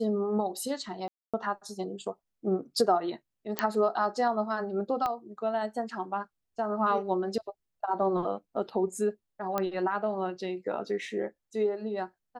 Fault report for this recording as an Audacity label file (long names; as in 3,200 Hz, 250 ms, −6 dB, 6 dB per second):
1.080000	1.340000	drop-out 256 ms
3.590000	3.590000	click −10 dBFS
5.060000	5.060000	click −18 dBFS
9.580000	9.580000	click −15 dBFS